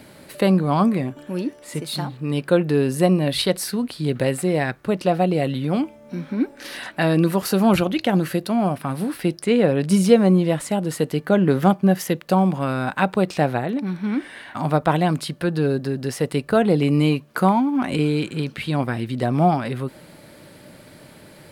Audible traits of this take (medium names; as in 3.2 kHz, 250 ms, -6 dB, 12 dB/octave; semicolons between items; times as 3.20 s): noise floor -47 dBFS; spectral tilt -6.0 dB/octave